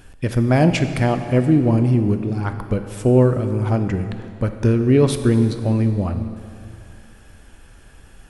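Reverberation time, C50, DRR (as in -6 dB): 2.5 s, 8.5 dB, 7.5 dB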